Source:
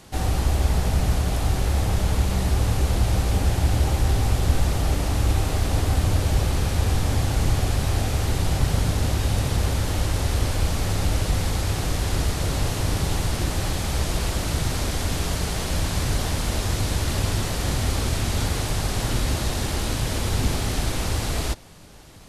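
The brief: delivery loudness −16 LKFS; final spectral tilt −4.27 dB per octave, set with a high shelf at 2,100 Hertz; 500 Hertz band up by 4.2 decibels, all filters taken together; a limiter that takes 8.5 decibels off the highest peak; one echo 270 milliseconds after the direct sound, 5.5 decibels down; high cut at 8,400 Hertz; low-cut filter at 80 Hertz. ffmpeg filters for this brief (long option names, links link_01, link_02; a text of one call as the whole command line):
ffmpeg -i in.wav -af "highpass=80,lowpass=8400,equalizer=frequency=500:width_type=o:gain=5,highshelf=frequency=2100:gain=3,alimiter=limit=-18.5dB:level=0:latency=1,aecho=1:1:270:0.531,volume=11dB" out.wav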